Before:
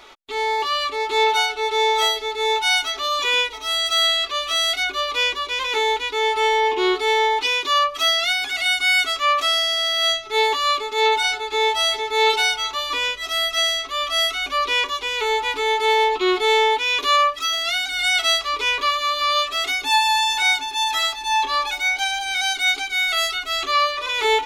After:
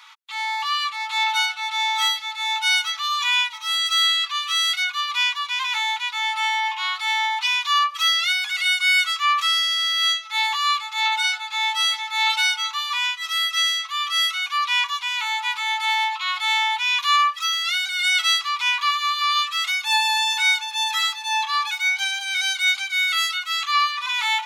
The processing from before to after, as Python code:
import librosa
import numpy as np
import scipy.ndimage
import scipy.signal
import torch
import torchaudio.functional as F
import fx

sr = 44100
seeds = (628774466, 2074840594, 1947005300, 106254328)

y = scipy.signal.sosfilt(scipy.signal.ellip(4, 1.0, 50, 940.0, 'highpass', fs=sr, output='sos'), x)